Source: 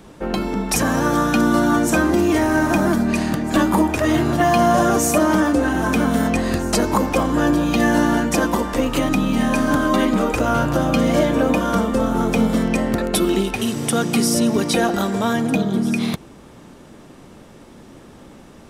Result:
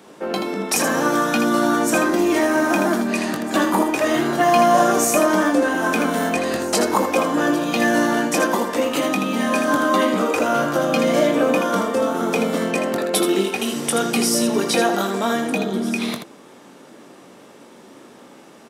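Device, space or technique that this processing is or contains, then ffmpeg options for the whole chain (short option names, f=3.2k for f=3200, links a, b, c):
slapback doubling: -filter_complex "[0:a]highpass=280,asplit=3[a][b][c];[b]adelay=21,volume=-8dB[d];[c]adelay=80,volume=-7dB[e];[a][d][e]amix=inputs=3:normalize=0"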